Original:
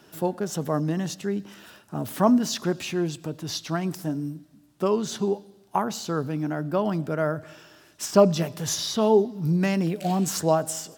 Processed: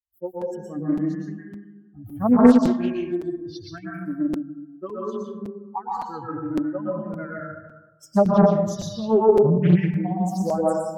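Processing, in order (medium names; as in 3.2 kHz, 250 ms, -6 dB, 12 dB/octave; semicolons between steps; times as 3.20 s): expander on every frequency bin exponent 3; tilt EQ -2.5 dB/octave; plate-style reverb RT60 1.2 s, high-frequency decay 0.25×, pre-delay 105 ms, DRR -5 dB; crackling interface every 0.56 s, samples 256, repeat, from 0.41 s; loudspeaker Doppler distortion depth 0.6 ms; trim -1 dB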